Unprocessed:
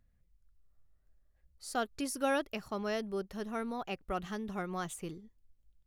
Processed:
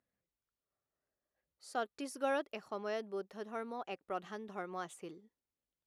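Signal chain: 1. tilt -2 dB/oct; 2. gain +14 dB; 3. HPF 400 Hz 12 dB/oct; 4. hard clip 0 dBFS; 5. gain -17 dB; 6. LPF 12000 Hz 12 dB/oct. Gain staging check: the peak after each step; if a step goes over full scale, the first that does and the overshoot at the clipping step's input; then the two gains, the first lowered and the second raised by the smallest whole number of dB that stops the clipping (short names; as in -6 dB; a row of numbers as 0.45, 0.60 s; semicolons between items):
-17.0, -3.0, -5.5, -5.5, -22.5, -22.5 dBFS; no overload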